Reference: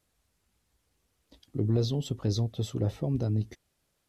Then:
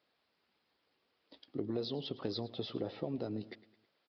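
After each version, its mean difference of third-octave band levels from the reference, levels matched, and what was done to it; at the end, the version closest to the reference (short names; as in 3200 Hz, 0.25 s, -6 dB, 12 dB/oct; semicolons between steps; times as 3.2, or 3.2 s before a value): 7.5 dB: HPF 300 Hz 12 dB/oct; compressor 3:1, threshold -36 dBFS, peak gain reduction 8 dB; on a send: feedback echo 0.107 s, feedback 48%, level -18.5 dB; on the sum: downsampling 11025 Hz; gain +1.5 dB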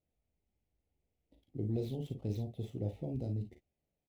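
4.0 dB: median filter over 9 samples; band shelf 1300 Hz -15 dB 1 oct; early reflections 39 ms -7.5 dB, 53 ms -10 dB; mismatched tape noise reduction decoder only; gain -9 dB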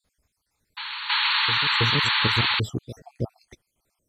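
13.5 dB: random spectral dropouts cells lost 63%; notch 2800 Hz, Q 9.4; painted sound noise, 1.09–2.6, 830–4500 Hz -28 dBFS; on a send: reverse echo 0.323 s -10.5 dB; on the sum: gain +5 dB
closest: second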